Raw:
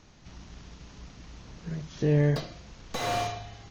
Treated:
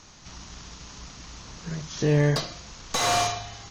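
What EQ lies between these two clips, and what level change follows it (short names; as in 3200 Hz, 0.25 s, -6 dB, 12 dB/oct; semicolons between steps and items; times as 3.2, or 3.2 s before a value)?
bell 1100 Hz +6.5 dB 1.1 oct; bell 7200 Hz +12.5 dB 2.1 oct; +1.5 dB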